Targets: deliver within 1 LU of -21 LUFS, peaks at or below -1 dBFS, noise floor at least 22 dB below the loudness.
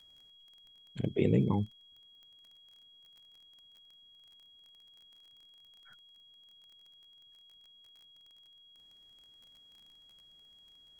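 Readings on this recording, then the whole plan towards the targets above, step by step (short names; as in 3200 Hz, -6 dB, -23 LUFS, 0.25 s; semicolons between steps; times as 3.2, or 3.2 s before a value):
ticks 23/s; steady tone 3300 Hz; tone level -57 dBFS; loudness -31.5 LUFS; peak -13.0 dBFS; loudness target -21.0 LUFS
-> de-click; notch 3300 Hz, Q 30; gain +10.5 dB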